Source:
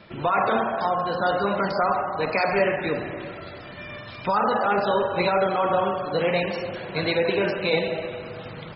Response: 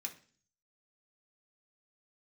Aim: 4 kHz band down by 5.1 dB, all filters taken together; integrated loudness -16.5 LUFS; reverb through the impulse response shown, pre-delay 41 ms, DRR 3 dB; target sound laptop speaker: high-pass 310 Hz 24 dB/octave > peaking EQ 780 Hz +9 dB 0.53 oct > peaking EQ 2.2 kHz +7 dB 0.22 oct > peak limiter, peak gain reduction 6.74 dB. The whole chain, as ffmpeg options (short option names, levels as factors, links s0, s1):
-filter_complex "[0:a]equalizer=f=4000:t=o:g=-6.5,asplit=2[s0][s1];[1:a]atrim=start_sample=2205,adelay=41[s2];[s1][s2]afir=irnorm=-1:irlink=0,volume=0.891[s3];[s0][s3]amix=inputs=2:normalize=0,highpass=f=310:w=0.5412,highpass=f=310:w=1.3066,equalizer=f=780:t=o:w=0.53:g=9,equalizer=f=2200:t=o:w=0.22:g=7,volume=1.68,alimiter=limit=0.501:level=0:latency=1"